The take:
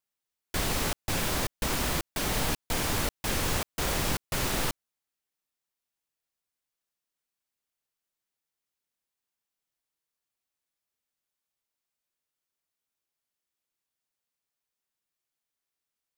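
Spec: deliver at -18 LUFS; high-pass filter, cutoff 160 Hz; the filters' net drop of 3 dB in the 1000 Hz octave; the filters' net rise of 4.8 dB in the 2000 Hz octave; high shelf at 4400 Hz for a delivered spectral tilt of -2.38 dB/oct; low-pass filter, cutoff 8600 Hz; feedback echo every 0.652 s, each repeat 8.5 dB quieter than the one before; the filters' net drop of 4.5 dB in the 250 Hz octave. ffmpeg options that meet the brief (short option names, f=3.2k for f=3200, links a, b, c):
-af "highpass=160,lowpass=8.6k,equalizer=f=250:t=o:g=-4.5,equalizer=f=1k:t=o:g=-6,equalizer=f=2k:t=o:g=9,highshelf=f=4.4k:g=-6.5,aecho=1:1:652|1304|1956|2608:0.376|0.143|0.0543|0.0206,volume=13dB"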